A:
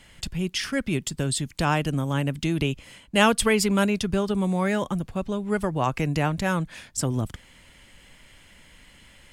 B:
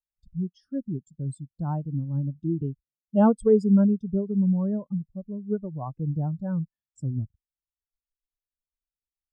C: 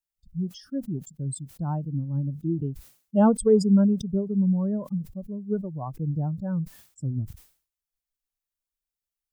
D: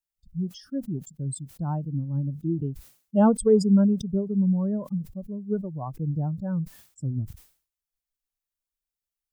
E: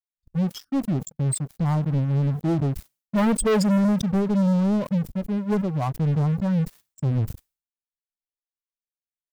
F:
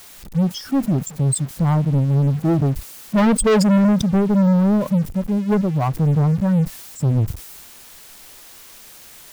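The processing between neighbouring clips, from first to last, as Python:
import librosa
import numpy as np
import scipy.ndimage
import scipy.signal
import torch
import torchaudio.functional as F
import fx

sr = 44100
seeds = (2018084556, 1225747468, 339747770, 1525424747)

y1 = fx.peak_eq(x, sr, hz=2300.0, db=-13.5, octaves=0.75)
y1 = fx.spectral_expand(y1, sr, expansion=2.5)
y1 = F.gain(torch.from_numpy(y1), -1.5).numpy()
y2 = fx.high_shelf(y1, sr, hz=6600.0, db=6.5)
y2 = fx.sustainer(y2, sr, db_per_s=130.0)
y3 = y2
y4 = fx.leveller(y3, sr, passes=5)
y4 = F.gain(torch.from_numpy(y4), -9.0).numpy()
y5 = y4 + 0.5 * 10.0 ** (-35.5 / 20.0) * np.sign(y4)
y5 = F.gain(torch.from_numpy(y5), 4.5).numpy()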